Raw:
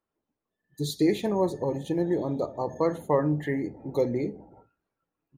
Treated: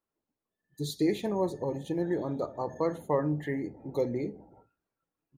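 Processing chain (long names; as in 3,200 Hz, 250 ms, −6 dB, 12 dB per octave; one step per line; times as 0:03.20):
0:02.02–0:02.81: parametric band 1,500 Hz +10.5 dB 0.5 octaves
level −4 dB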